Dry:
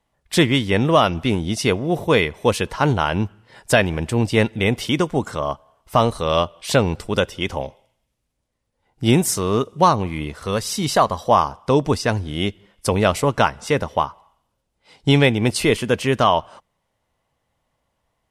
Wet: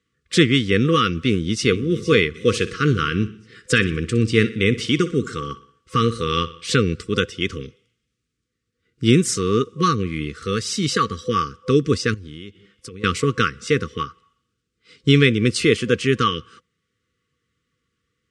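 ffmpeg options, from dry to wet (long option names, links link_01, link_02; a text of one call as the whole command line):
ffmpeg -i in.wav -filter_complex "[0:a]asplit=2[link_01][link_02];[link_02]afade=type=in:start_time=1.16:duration=0.01,afade=type=out:start_time=1.74:duration=0.01,aecho=0:1:460|920|1380|1840:0.223872|0.0895488|0.0358195|0.0143278[link_03];[link_01][link_03]amix=inputs=2:normalize=0,asplit=3[link_04][link_05][link_06];[link_04]afade=type=out:start_time=2.34:duration=0.02[link_07];[link_05]aecho=1:1:61|122|183|244:0.158|0.0761|0.0365|0.0175,afade=type=in:start_time=2.34:duration=0.02,afade=type=out:start_time=6.7:duration=0.02[link_08];[link_06]afade=type=in:start_time=6.7:duration=0.02[link_09];[link_07][link_08][link_09]amix=inputs=3:normalize=0,asettb=1/sr,asplit=3[link_10][link_11][link_12];[link_10]atrim=end=12.144[link_13];[link_11]atrim=start=12.14:end=13.04,asetpts=PTS-STARTPTS,afade=type=in:duration=0.004:curve=qsin,afade=type=out:start_time=0.896:duration=0.004:curve=qsin,acompressor=threshold=-32dB:ratio=16:attack=3.2:release=140:knee=1:detection=peak[link_14];[link_12]atrim=start=13.036[link_15];[link_13][link_14]acrossfade=duration=0.004:curve1=hsin:curve2=qsin[link_16];[link_16][link_15]acrossfade=duration=0.004:curve1=qsin:curve2=hsin,highpass=79,afftfilt=real='re*(1-between(b*sr/4096,510,1100))':imag='im*(1-between(b*sr/4096,510,1100))':win_size=4096:overlap=0.75,lowpass=frequency=8300:width=0.5412,lowpass=frequency=8300:width=1.3066,volume=1dB" out.wav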